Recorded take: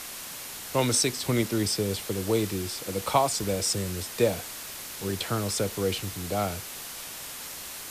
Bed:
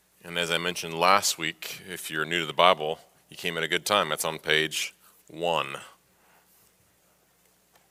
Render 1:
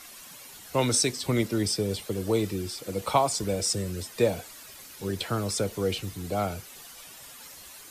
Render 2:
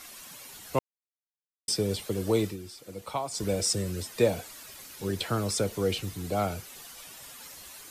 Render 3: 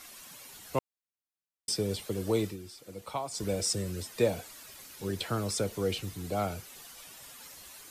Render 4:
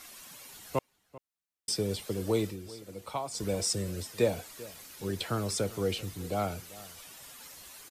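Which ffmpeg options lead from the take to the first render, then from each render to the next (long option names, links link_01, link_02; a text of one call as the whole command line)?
ffmpeg -i in.wav -af "afftdn=noise_reduction=11:noise_floor=-40" out.wav
ffmpeg -i in.wav -filter_complex "[0:a]asplit=5[link_01][link_02][link_03][link_04][link_05];[link_01]atrim=end=0.79,asetpts=PTS-STARTPTS,afade=type=out:start_time=0.786:duration=0.004:curve=hsin[link_06];[link_02]atrim=start=0.79:end=1.68,asetpts=PTS-STARTPTS,volume=0[link_07];[link_03]atrim=start=1.68:end=2.57,asetpts=PTS-STARTPTS,afade=type=in:duration=0.004:curve=hsin,afade=type=out:start_time=0.71:duration=0.18:curve=qsin:silence=0.334965[link_08];[link_04]atrim=start=2.57:end=3.31,asetpts=PTS-STARTPTS,volume=-9.5dB[link_09];[link_05]atrim=start=3.31,asetpts=PTS-STARTPTS,afade=type=in:duration=0.18:curve=qsin:silence=0.334965[link_10];[link_06][link_07][link_08][link_09][link_10]concat=n=5:v=0:a=1" out.wav
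ffmpeg -i in.wav -af "volume=-3dB" out.wav
ffmpeg -i in.wav -filter_complex "[0:a]asplit=2[link_01][link_02];[link_02]adelay=390.7,volume=-19dB,highshelf=frequency=4000:gain=-8.79[link_03];[link_01][link_03]amix=inputs=2:normalize=0" out.wav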